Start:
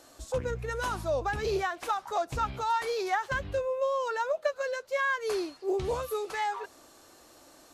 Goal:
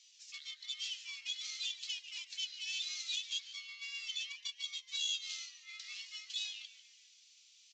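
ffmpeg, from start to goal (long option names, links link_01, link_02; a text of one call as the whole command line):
ffmpeg -i in.wav -filter_complex "[0:a]highpass=frequency=490:poles=1,equalizer=frequency=2300:width=0.85:gain=11.5,aeval=exprs='val(0)*sin(2*PI*1700*n/s)':channel_layout=same,aeval=exprs='(tanh(20*val(0)+0.65)-tanh(0.65))/20':channel_layout=same,flanger=delay=1:depth=2.8:regen=-44:speed=0.46:shape=sinusoidal,acrossover=split=3000[link_01][link_02];[link_01]acrusher=bits=2:mix=0:aa=0.5[link_03];[link_02]asplit=5[link_04][link_05][link_06][link_07][link_08];[link_05]adelay=144,afreqshift=-140,volume=-15dB[link_09];[link_06]adelay=288,afreqshift=-280,volume=-21.6dB[link_10];[link_07]adelay=432,afreqshift=-420,volume=-28.1dB[link_11];[link_08]adelay=576,afreqshift=-560,volume=-34.7dB[link_12];[link_04][link_09][link_10][link_11][link_12]amix=inputs=5:normalize=0[link_13];[link_03][link_13]amix=inputs=2:normalize=0,aresample=16000,aresample=44100,volume=5.5dB" out.wav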